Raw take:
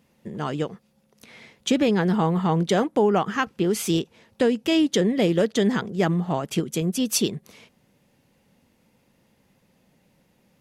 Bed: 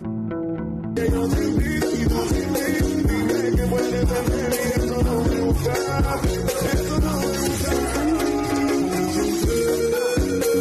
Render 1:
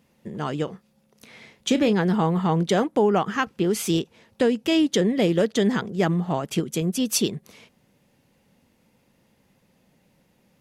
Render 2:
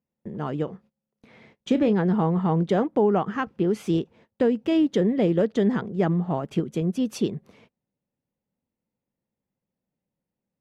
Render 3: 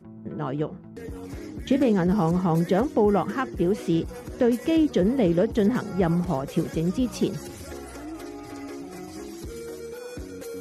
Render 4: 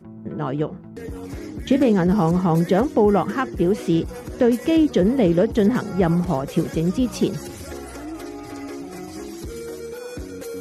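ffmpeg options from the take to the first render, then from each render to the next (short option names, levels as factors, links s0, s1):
-filter_complex "[0:a]asettb=1/sr,asplit=3[s0][s1][s2];[s0]atrim=end=0.644[s3];[s1]atrim=start=0.64:end=1.93,asetpts=PTS-STARTPTS,afade=t=in:d=0.004:c=qsin,afade=t=out:st=1.286:d=0.004:c=qsin,asplit=2[s4][s5];[s5]adelay=32,volume=0.237[s6];[s4][s6]amix=inputs=2:normalize=0,atrim=end_sample=56889[s7];[s2]atrim=start=1.926[s8];[s3][s7]acrossfade=d=0.004:c1=hsin:c2=qsin[s9];[s9][s8]acrossfade=d=0.004:c1=qsin:c2=hsin"
-af "agate=range=0.0794:threshold=0.00316:ratio=16:detection=peak,lowpass=f=1000:p=1"
-filter_complex "[1:a]volume=0.15[s0];[0:a][s0]amix=inputs=2:normalize=0"
-af "volume=1.58"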